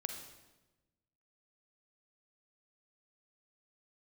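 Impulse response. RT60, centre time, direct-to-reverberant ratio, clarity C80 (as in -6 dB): 1.1 s, 30 ms, 4.5 dB, 8.0 dB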